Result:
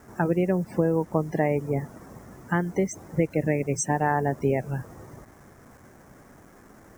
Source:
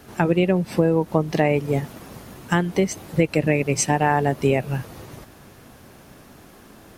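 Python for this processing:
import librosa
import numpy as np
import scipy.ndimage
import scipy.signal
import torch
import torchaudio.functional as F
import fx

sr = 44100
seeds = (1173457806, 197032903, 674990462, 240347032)

y = fx.spec_topn(x, sr, count=64)
y = fx.quant_dither(y, sr, seeds[0], bits=8, dither='none')
y = fx.band_shelf(y, sr, hz=3400.0, db=-12.5, octaves=1.1)
y = y * librosa.db_to_amplitude(-4.5)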